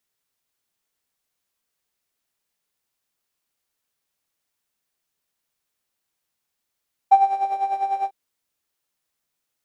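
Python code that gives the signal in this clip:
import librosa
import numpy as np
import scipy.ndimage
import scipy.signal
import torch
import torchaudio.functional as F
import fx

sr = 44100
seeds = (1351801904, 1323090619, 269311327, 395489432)

y = fx.sub_patch_tremolo(sr, seeds[0], note=79, wave='square', wave2='saw', interval_st=0, detune_cents=10, level2_db=-9.0, sub_db=-15.0, noise_db=-5.0, kind='bandpass', cutoff_hz=550.0, q=6.6, env_oct=0.5, env_decay_s=0.27, env_sustain_pct=40, attack_ms=10.0, decay_s=0.08, sustain_db=-3.5, release_s=0.05, note_s=0.95, lfo_hz=10.0, tremolo_db=10.5)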